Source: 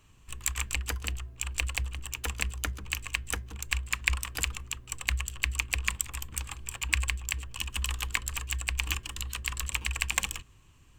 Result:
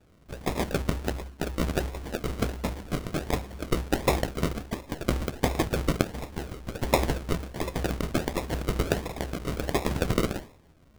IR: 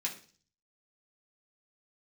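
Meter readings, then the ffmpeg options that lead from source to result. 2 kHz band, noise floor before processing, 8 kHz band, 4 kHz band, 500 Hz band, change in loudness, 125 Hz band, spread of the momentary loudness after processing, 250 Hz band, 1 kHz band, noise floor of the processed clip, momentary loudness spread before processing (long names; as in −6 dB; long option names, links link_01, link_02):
−4.5 dB, −57 dBFS, −7.5 dB, −3.0 dB, +22.0 dB, +2.0 dB, +5.0 dB, 8 LU, +20.5 dB, +9.0 dB, −57 dBFS, 7 LU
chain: -filter_complex "[1:a]atrim=start_sample=2205[link_01];[0:a][link_01]afir=irnorm=-1:irlink=0,acrusher=samples=41:mix=1:aa=0.000001:lfo=1:lforange=24.6:lforate=1.4,volume=2.5dB"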